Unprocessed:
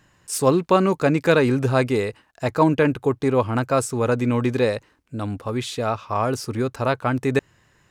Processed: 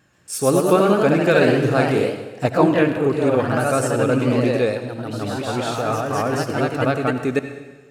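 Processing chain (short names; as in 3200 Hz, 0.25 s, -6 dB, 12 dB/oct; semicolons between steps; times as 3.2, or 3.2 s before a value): vibrato 6.4 Hz 39 cents; notch comb 970 Hz; echoes that change speed 0.13 s, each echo +1 st, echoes 3; on a send: reverb RT60 1.2 s, pre-delay 63 ms, DRR 8.5 dB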